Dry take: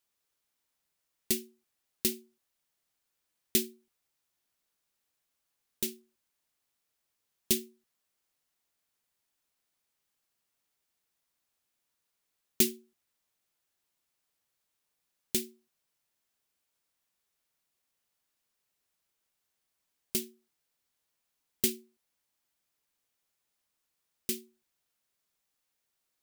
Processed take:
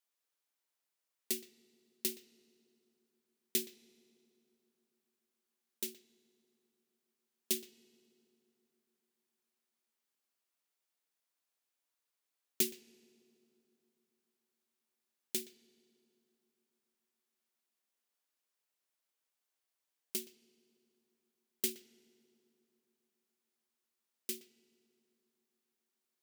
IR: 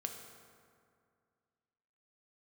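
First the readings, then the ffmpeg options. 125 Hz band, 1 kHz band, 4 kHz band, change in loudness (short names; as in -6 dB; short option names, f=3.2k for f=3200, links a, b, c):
-14.5 dB, n/a, -6.0 dB, -6.5 dB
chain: -filter_complex "[0:a]highpass=270,asplit=2[a][b];[b]equalizer=f=11k:w=0.85:g=-14.5[c];[1:a]atrim=start_sample=2205,asetrate=27783,aresample=44100,adelay=120[d];[c][d]afir=irnorm=-1:irlink=0,volume=-17dB[e];[a][e]amix=inputs=2:normalize=0,volume=-6dB"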